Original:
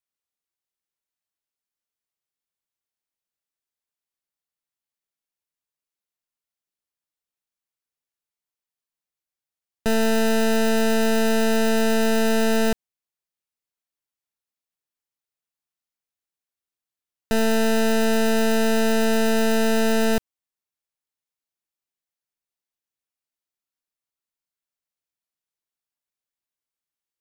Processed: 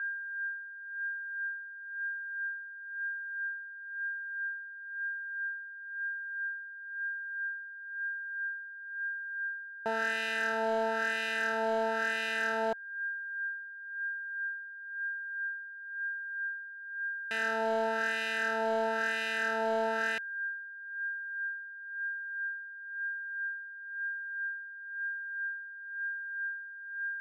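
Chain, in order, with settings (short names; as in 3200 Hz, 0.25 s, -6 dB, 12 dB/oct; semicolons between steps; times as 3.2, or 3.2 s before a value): whine 1600 Hz -31 dBFS; wah 1 Hz 780–2300 Hz, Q 2.4; hard clip -22.5 dBFS, distortion -26 dB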